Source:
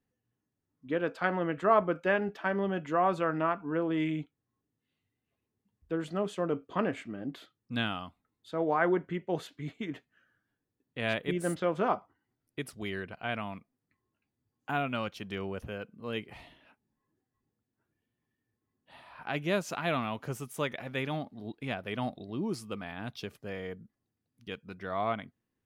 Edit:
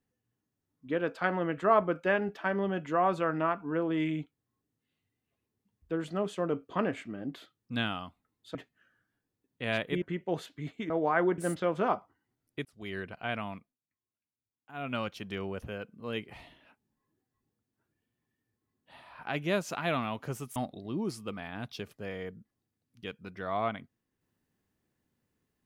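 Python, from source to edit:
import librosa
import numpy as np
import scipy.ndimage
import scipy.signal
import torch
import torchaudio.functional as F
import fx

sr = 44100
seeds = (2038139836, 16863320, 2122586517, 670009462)

y = fx.edit(x, sr, fx.swap(start_s=8.55, length_s=0.48, other_s=9.91, other_length_s=1.47),
    fx.fade_in_span(start_s=12.65, length_s=0.34),
    fx.fade_down_up(start_s=13.55, length_s=1.38, db=-17.5, fade_s=0.2),
    fx.cut(start_s=20.56, length_s=1.44), tone=tone)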